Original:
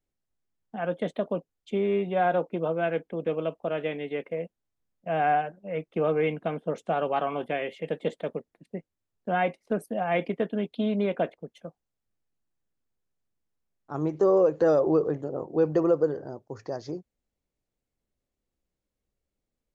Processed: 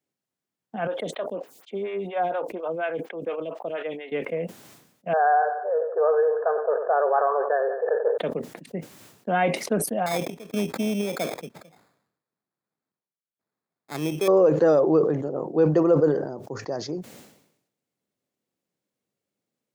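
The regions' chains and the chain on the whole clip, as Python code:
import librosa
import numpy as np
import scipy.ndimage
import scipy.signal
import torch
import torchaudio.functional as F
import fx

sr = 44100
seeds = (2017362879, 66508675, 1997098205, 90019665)

y = fx.chain(x, sr, fx.highpass(hz=590.0, slope=6),
    fx.stagger_phaser(hz=4.2), at=(0.87, 4.12))
y = fx.chain(y, sr, fx.brickwall_bandpass(low_hz=390.0, high_hz=1800.0),
    fx.echo_feedback(ms=92, feedback_pct=43, wet_db=-17),
    fx.env_flatten(amount_pct=50), at=(5.13, 8.18))
y = fx.chain(y, sr, fx.tremolo_random(seeds[0], hz=4.2, depth_pct=90),
    fx.sample_hold(seeds[1], rate_hz=2900.0, jitter_pct=0), at=(10.06, 14.28))
y = scipy.signal.sosfilt(scipy.signal.butter(4, 130.0, 'highpass', fs=sr, output='sos'), y)
y = fx.sustainer(y, sr, db_per_s=72.0)
y = y * librosa.db_to_amplitude(3.0)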